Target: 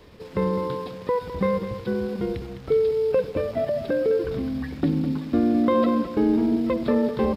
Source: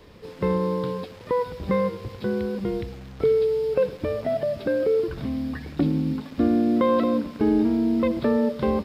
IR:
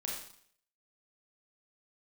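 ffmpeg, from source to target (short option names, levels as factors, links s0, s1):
-af "atempo=1.2,aecho=1:1:207:0.316"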